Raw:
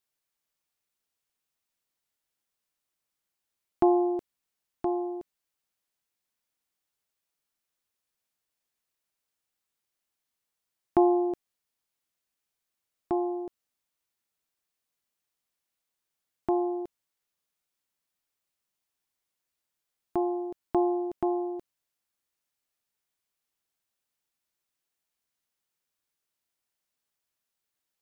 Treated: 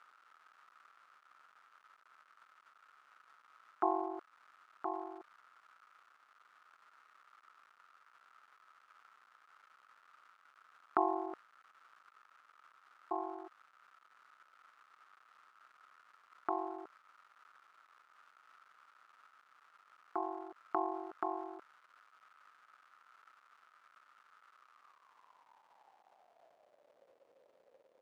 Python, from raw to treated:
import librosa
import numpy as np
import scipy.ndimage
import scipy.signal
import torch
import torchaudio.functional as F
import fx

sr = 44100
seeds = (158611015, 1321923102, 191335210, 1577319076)

y = x * np.sin(2.0 * np.pi * 23.0 * np.arange(len(x)) / sr)
y = fx.dmg_crackle(y, sr, seeds[0], per_s=470.0, level_db=-48.0)
y = fx.filter_sweep_bandpass(y, sr, from_hz=1300.0, to_hz=530.0, start_s=24.6, end_s=27.11, q=7.4)
y = y * 10.0 ** (15.0 / 20.0)